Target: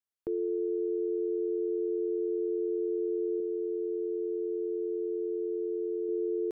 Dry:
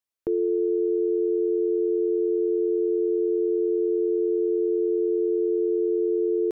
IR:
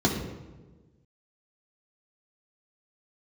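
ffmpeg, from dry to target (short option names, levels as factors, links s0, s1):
-filter_complex "[0:a]asettb=1/sr,asplit=3[s0][s1][s2];[s0]atrim=end=3.404[s3];[s1]atrim=start=3.4:end=6.09,asetpts=PTS-STARTPTS,afade=t=in:d=0.004:c=qsin,afade=t=out:st=2.686:d=0.004:c=qsin,equalizer=f=64:w=0.33:g=-8.5[s4];[s2]atrim=start=6.086[s5];[s3][s4]acrossfade=d=0.004:c1=hsin:c2=qsin[s6];[s6][s5]acrossfade=d=0.004:c1=qsin:c2=hsin,volume=0.422"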